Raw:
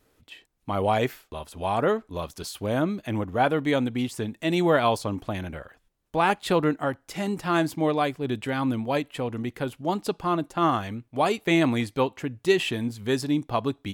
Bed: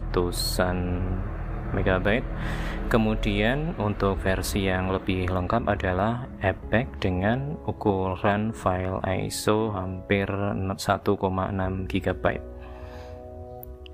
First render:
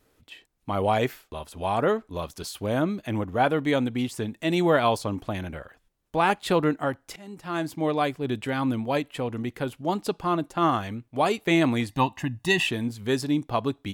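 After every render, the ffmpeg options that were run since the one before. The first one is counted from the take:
-filter_complex "[0:a]asettb=1/sr,asplit=3[s0][s1][s2];[s0]atrim=end=11.894[s3];[s1]atrim=start=11.89:end=12.67,asetpts=PTS-STARTPTS,afade=t=in:d=0.004:c=qsin,afade=t=out:st=0.776:d=0.004:c=qsin,aecho=1:1:1.1:0.99,atrim=end_sample=34398[s4];[s2]atrim=start=12.666[s5];[s3][s4]acrossfade=d=0.004:c1=hsin:c2=qsin[s6];[s6][s5]acrossfade=d=0.004:c1=qsin:c2=hsin,asplit=2[s7][s8];[s7]atrim=end=7.16,asetpts=PTS-STARTPTS,afade=t=out:st=7.156:d=0.004:c=hsin:silence=0.0841395[s9];[s8]atrim=start=7.16,asetpts=PTS-STARTPTS,afade=t=in:d=0.88:silence=0.0841395[s10];[s9][s10]concat=n=2:v=0:a=1"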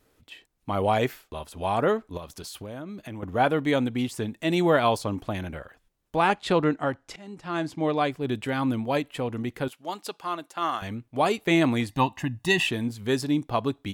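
-filter_complex "[0:a]asettb=1/sr,asplit=3[s0][s1][s2];[s0]atrim=end=2.174[s3];[s1]atrim=start=2.17:end=3.23,asetpts=PTS-STARTPTS,afade=t=in:d=0.004:c=qsin,afade=t=out:st=1.056:d=0.004:c=qsin,acompressor=threshold=0.0178:ratio=5:attack=3.2:release=140:knee=1:detection=peak[s4];[s2]atrim=start=3.226[s5];[s3][s4]acrossfade=d=0.004:c1=hsin:c2=qsin[s6];[s6][s5]acrossfade=d=0.004:c1=qsin:c2=hsin,asettb=1/sr,asplit=3[s7][s8][s9];[s7]atrim=end=6.274[s10];[s8]atrim=start=6.27:end=8.12,asetpts=PTS-STARTPTS,afade=t=in:d=0.004:c=qsin,afade=t=out:st=1.846:d=0.004:c=qsin,lowpass=7300[s11];[s9]atrim=start=8.116[s12];[s10][s11]acrossfade=d=0.004:c1=hsin:c2=qsin[s13];[s13][s12]acrossfade=d=0.004:c1=qsin:c2=hsin,asettb=1/sr,asplit=3[s14][s15][s16];[s14]atrim=end=9.684[s17];[s15]atrim=start=9.68:end=10.82,asetpts=PTS-STARTPTS,afade=t=in:d=0.004:c=qsin,afade=t=out:st=1.136:d=0.004:c=qsin,highpass=f=1200:p=1[s18];[s16]atrim=start=10.816[s19];[s17][s18]acrossfade=d=0.004:c1=hsin:c2=qsin[s20];[s20][s19]acrossfade=d=0.004:c1=qsin:c2=hsin"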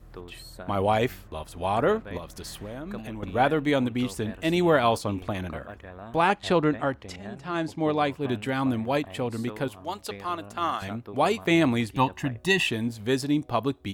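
-filter_complex "[1:a]volume=0.126[s0];[0:a][s0]amix=inputs=2:normalize=0"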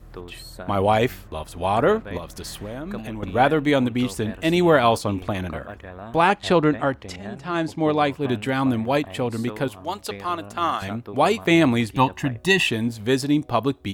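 -af "volume=1.68,alimiter=limit=0.708:level=0:latency=1"

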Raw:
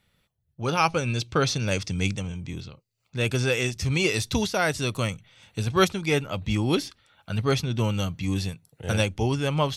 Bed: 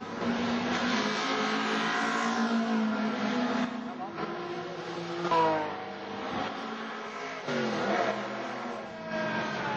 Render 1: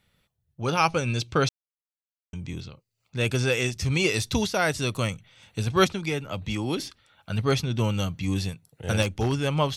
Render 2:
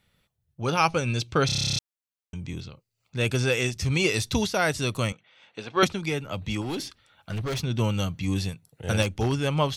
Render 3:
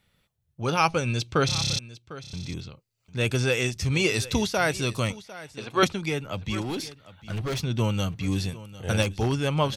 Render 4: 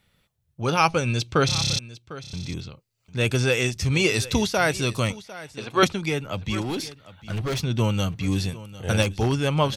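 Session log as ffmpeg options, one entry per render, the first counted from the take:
-filter_complex "[0:a]asettb=1/sr,asplit=3[s0][s1][s2];[s0]atrim=end=5.864[s3];[s1]atrim=start=5.86:end=6.8,asetpts=PTS-STARTPTS,afade=t=in:d=0.004:c=qsin,afade=t=out:st=0.936:d=0.004:c=qsin,acrossover=split=260|7000[s4][s5][s6];[s4]acompressor=threshold=0.0282:ratio=4[s7];[s5]acompressor=threshold=0.0398:ratio=4[s8];[s6]acompressor=threshold=0.00355:ratio=4[s9];[s7][s8][s9]amix=inputs=3:normalize=0[s10];[s2]atrim=start=6.796[s11];[s3][s10]acrossfade=d=0.004:c1=hsin:c2=qsin[s12];[s12][s11]acrossfade=d=0.004:c1=qsin:c2=hsin,asettb=1/sr,asplit=3[s13][s14][s15];[s13]atrim=end=9.024[s16];[s14]atrim=start=9.02:end=9.45,asetpts=PTS-STARTPTS,afade=t=in:d=0.004:c=qsin,afade=t=out:st=0.426:d=0.004:c=qsin,aeval=exprs='0.126*(abs(mod(val(0)/0.126+3,4)-2)-1)':c=same[s17];[s15]atrim=start=9.446[s18];[s16][s17]acrossfade=d=0.004:c1=hsin:c2=qsin[s19];[s19][s18]acrossfade=d=0.004:c1=qsin:c2=hsin,asplit=3[s20][s21][s22];[s20]atrim=end=1.49,asetpts=PTS-STARTPTS,afade=t=out:st=1.486:d=0.004:c=hsin[s23];[s21]atrim=start=1.49:end=2.33,asetpts=PTS-STARTPTS,volume=0[s24];[s22]atrim=start=2.33,asetpts=PTS-STARTPTS,afade=t=in:d=0.004:c=hsin[s25];[s23][s24][s25]concat=n=3:v=0:a=1"
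-filter_complex "[0:a]asettb=1/sr,asplit=3[s0][s1][s2];[s0]atrim=end=5.124[s3];[s1]atrim=start=5.12:end=5.83,asetpts=PTS-STARTPTS,afade=t=in:d=0.004:c=qsin,afade=t=out:st=0.706:d=0.004:c=qsin,highpass=360,lowpass=3500[s4];[s2]atrim=start=5.826[s5];[s3][s4]acrossfade=d=0.004:c1=hsin:c2=qsin[s6];[s6][s5]acrossfade=d=0.004:c1=qsin:c2=hsin,asettb=1/sr,asplit=3[s7][s8][s9];[s7]atrim=end=6.614[s10];[s8]atrim=start=6.61:end=7.61,asetpts=PTS-STARTPTS,afade=t=in:d=0.004:c=qsin,afade=t=out:st=0.996:d=0.004:c=qsin,volume=22.4,asoftclip=hard,volume=0.0447[s11];[s9]atrim=start=7.606[s12];[s10][s11]acrossfade=d=0.004:c1=hsin:c2=qsin[s13];[s13][s12]acrossfade=d=0.004:c1=qsin:c2=hsin,asplit=12[s14][s15][s16][s17][s18][s19][s20][s21][s22][s23][s24][s25];[s14]atrim=end=1.492[s26];[s15]atrim=start=1.458:end=1.492[s27];[s16]atrim=start=1.458:end=1.492[s28];[s17]atrim=start=1.458:end=1.492[s29];[s18]atrim=start=1.458:end=1.492[s30];[s19]atrim=start=1.458:end=1.492[s31];[s20]atrim=start=1.458:end=1.492[s32];[s21]atrim=start=1.458:end=1.492[s33];[s22]atrim=start=1.458:end=1.492[s34];[s23]atrim=start=1.458:end=1.492[s35];[s24]atrim=start=1.458:end=1.492[s36];[s25]atrim=start=1.788[s37];[s26][s27]acrossfade=d=0.004:c1=hsin:c2=hsin[s38];[s38][s28]acrossfade=d=0.004:c1=hsin:c2=hsin[s39];[s39][s29]acrossfade=d=0.004:c1=hsin:c2=hsin[s40];[s40][s30]acrossfade=d=0.004:c1=hsin:c2=hsin[s41];[s41][s31]acrossfade=d=0.004:c1=hsin:c2=hsin[s42];[s42][s32]acrossfade=d=0.004:c1=hsin:c2=hsin[s43];[s43][s33]acrossfade=d=0.004:c1=hsin:c2=hsin[s44];[s44][s34]acrossfade=d=0.004:c1=hsin:c2=hsin[s45];[s45][s35]acrossfade=d=0.004:c1=hsin:c2=hsin[s46];[s46][s36]acrossfade=d=0.004:c1=hsin:c2=hsin[s47];[s47][s37]acrossfade=d=0.004:c1=hsin:c2=hsin"
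-af "aecho=1:1:751:0.141"
-af "volume=1.33"

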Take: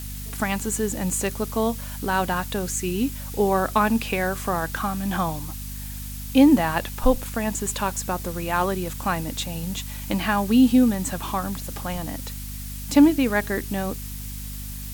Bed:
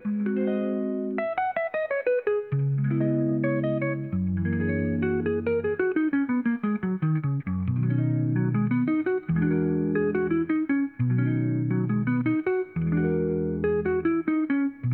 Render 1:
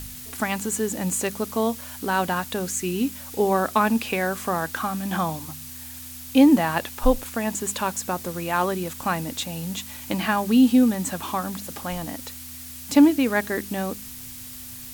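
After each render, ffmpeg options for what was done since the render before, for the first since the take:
-af "bandreject=f=50:t=h:w=4,bandreject=f=100:t=h:w=4,bandreject=f=150:t=h:w=4,bandreject=f=200:t=h:w=4"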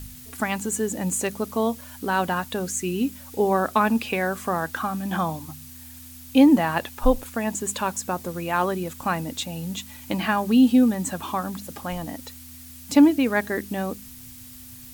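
-af "afftdn=nr=6:nf=-39"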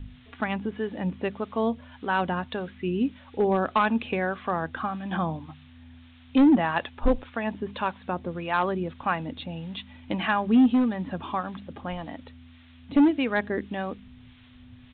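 -filter_complex "[0:a]aresample=8000,asoftclip=type=hard:threshold=0.211,aresample=44100,acrossover=split=600[s0][s1];[s0]aeval=exprs='val(0)*(1-0.5/2+0.5/2*cos(2*PI*1.7*n/s))':c=same[s2];[s1]aeval=exprs='val(0)*(1-0.5/2-0.5/2*cos(2*PI*1.7*n/s))':c=same[s3];[s2][s3]amix=inputs=2:normalize=0"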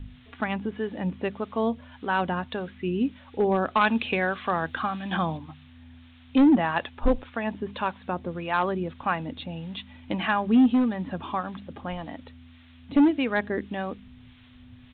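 -filter_complex "[0:a]asettb=1/sr,asplit=3[s0][s1][s2];[s0]atrim=end=3.814[s3];[s1]atrim=start=3.81:end=5.38,asetpts=PTS-STARTPTS,afade=t=in:d=0.004:c=qsin,afade=t=out:st=1.566:d=0.004:c=qsin,highshelf=f=2200:g=10.5[s4];[s2]atrim=start=5.376[s5];[s3][s4]acrossfade=d=0.004:c1=hsin:c2=qsin[s6];[s6][s5]acrossfade=d=0.004:c1=qsin:c2=hsin"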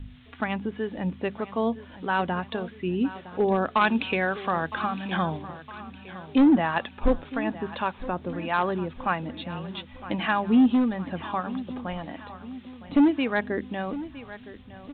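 -af "aecho=1:1:962|1924|2886|3848|4810:0.168|0.0873|0.0454|0.0236|0.0123"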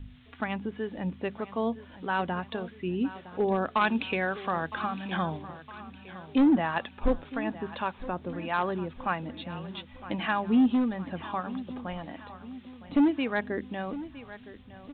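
-af "volume=0.668"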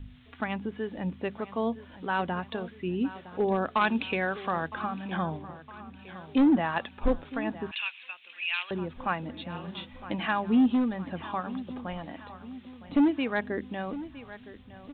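-filter_complex "[0:a]asettb=1/sr,asplit=3[s0][s1][s2];[s0]atrim=end=4.684[s3];[s1]atrim=start=4.68:end=5.99,asetpts=PTS-STARTPTS,afade=t=in:d=0.004:c=qsin,afade=t=out:st=1.306:d=0.004:c=qsin,highshelf=f=2400:g=-8[s4];[s2]atrim=start=5.986[s5];[s3][s4]acrossfade=d=0.004:c1=hsin:c2=qsin[s6];[s6][s5]acrossfade=d=0.004:c1=qsin:c2=hsin,asettb=1/sr,asplit=3[s7][s8][s9];[s7]atrim=end=7.714[s10];[s8]atrim=start=7.71:end=8.71,asetpts=PTS-STARTPTS,afade=t=in:d=0.004:c=qsin,afade=t=out:st=0.996:d=0.004:c=qsin,highpass=f=2600:t=q:w=6[s11];[s9]atrim=start=8.706[s12];[s10][s11]acrossfade=d=0.004:c1=hsin:c2=qsin[s13];[s13][s12]acrossfade=d=0.004:c1=qsin:c2=hsin,asettb=1/sr,asplit=3[s14][s15][s16];[s14]atrim=end=9.504[s17];[s15]atrim=start=9.5:end=10.05,asetpts=PTS-STARTPTS,afade=t=in:d=0.004:c=qsin,afade=t=out:st=0.546:d=0.004:c=qsin,asplit=2[s18][s19];[s19]adelay=40,volume=0.473[s20];[s18][s20]amix=inputs=2:normalize=0,atrim=end_sample=24255[s21];[s16]atrim=start=10.046[s22];[s17][s21]acrossfade=d=0.004:c1=hsin:c2=qsin[s23];[s23][s22]acrossfade=d=0.004:c1=qsin:c2=hsin"

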